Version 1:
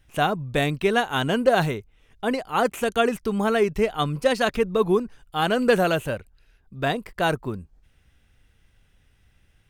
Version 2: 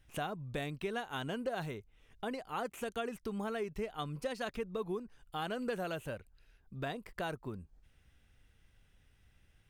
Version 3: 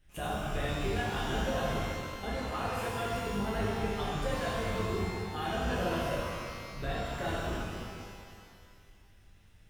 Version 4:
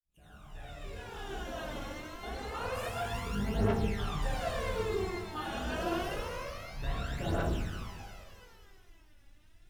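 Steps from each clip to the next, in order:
compression 2.5:1, threshold -34 dBFS, peak gain reduction 14 dB; trim -6 dB
octave divider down 2 oct, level +2 dB; pitch-shifted reverb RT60 2.1 s, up +12 st, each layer -8 dB, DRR -8 dB; trim -4 dB
fade-in on the opening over 2.77 s; phaser 0.27 Hz, delay 3.6 ms, feedback 65%; trim -4 dB

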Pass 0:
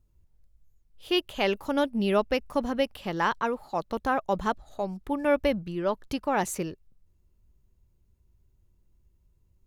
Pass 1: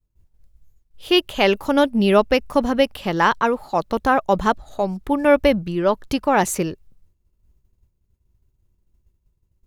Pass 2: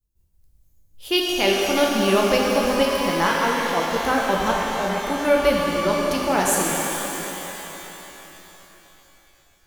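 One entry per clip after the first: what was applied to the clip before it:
expander -55 dBFS; trim +9 dB
treble shelf 4.7 kHz +12 dB; pitch-shifted reverb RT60 3.7 s, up +12 st, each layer -8 dB, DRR -2.5 dB; trim -7 dB

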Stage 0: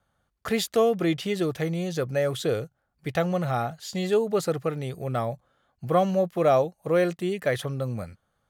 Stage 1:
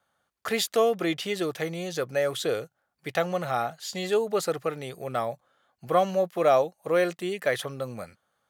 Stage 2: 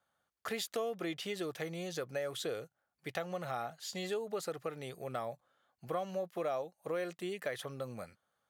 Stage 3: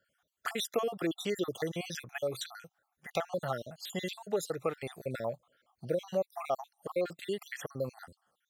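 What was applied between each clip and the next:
high-pass 500 Hz 6 dB/octave; trim +2 dB
compression 3:1, threshold -28 dBFS, peak gain reduction 9.5 dB; trim -7 dB
random holes in the spectrogram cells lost 56%; trim +7 dB

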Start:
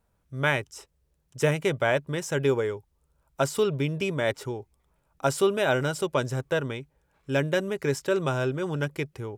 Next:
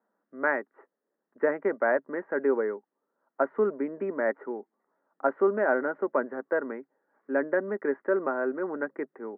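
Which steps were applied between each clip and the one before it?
Chebyshev band-pass 210–1900 Hz, order 5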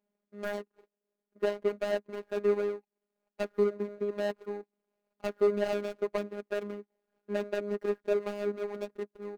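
median filter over 41 samples; robot voice 205 Hz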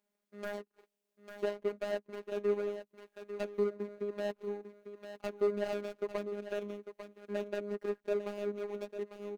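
on a send: delay 848 ms -12 dB; on the sum: tape noise reduction on one side only encoder only; trim -5 dB

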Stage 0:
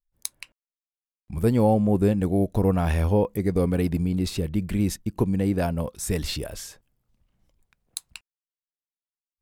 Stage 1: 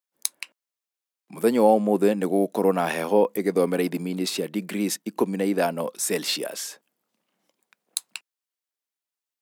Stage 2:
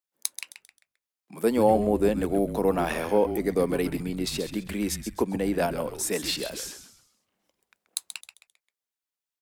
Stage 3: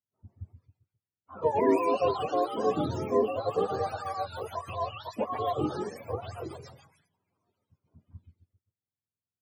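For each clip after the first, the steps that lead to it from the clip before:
Bessel high-pass 340 Hz, order 8; trim +5.5 dB
frequency-shifting echo 132 ms, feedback 35%, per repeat -130 Hz, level -10 dB; trim -3 dB
spectrum inverted on a logarithmic axis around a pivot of 460 Hz; bass shelf 200 Hz -8.5 dB; tape noise reduction on one side only encoder only

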